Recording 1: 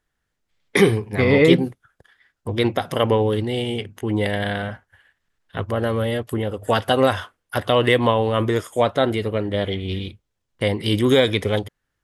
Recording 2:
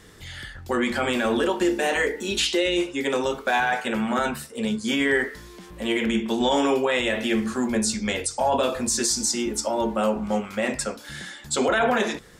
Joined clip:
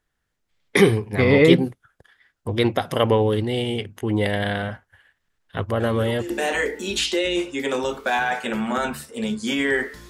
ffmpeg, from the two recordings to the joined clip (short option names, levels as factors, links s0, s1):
-filter_complex "[1:a]asplit=2[s0][s1];[0:a]apad=whole_dur=10.09,atrim=end=10.09,atrim=end=6.302[s2];[s1]atrim=start=1.708:end=5.5[s3];[s0]atrim=start=1.21:end=1.71,asetpts=PTS-STARTPTS,volume=0.251,afade=t=in:d=0.004:c=hsin,afade=t=out:st=0.496:d=0.004:c=hsin,adelay=5800[s4];[s2][s3]acrossfade=d=0.004:c1=hsin:c2=hsin[s5];[s5][s4]amix=inputs=2:normalize=0"